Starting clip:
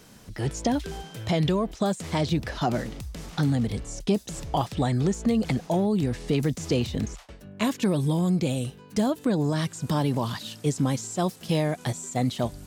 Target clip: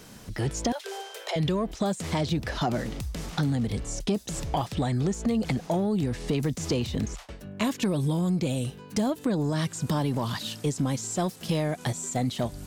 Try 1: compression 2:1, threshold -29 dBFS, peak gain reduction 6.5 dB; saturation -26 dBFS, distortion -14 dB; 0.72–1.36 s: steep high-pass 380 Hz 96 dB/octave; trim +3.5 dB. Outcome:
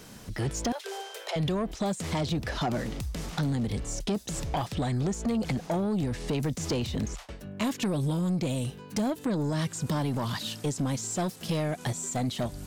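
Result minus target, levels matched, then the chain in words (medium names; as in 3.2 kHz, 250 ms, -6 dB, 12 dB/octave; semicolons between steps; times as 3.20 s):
saturation: distortion +10 dB
compression 2:1, threshold -29 dBFS, peak gain reduction 6.5 dB; saturation -18.5 dBFS, distortion -24 dB; 0.72–1.36 s: steep high-pass 380 Hz 96 dB/octave; trim +3.5 dB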